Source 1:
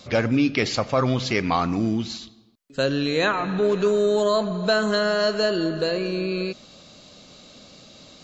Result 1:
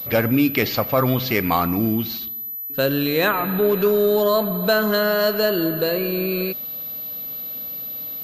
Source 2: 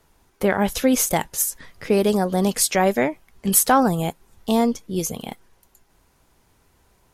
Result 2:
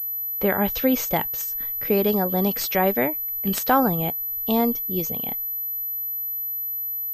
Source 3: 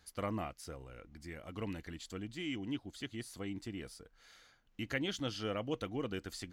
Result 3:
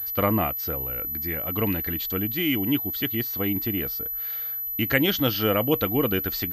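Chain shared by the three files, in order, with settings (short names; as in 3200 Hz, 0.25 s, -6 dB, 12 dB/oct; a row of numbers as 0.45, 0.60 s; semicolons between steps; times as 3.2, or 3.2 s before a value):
pulse-width modulation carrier 12000 Hz; normalise peaks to -6 dBFS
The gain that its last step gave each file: +2.5, -2.5, +15.0 dB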